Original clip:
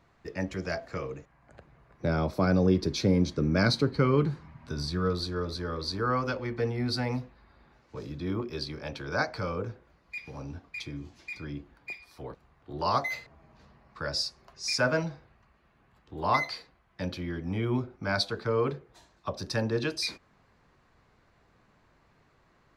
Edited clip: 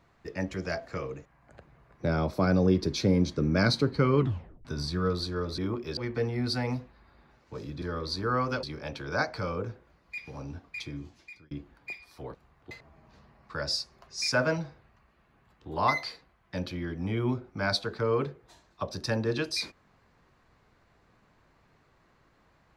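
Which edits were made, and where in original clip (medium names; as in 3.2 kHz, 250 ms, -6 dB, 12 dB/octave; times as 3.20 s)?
4.19 s: tape stop 0.46 s
5.58–6.39 s: swap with 8.24–8.63 s
11.00–11.51 s: fade out
12.71–13.17 s: delete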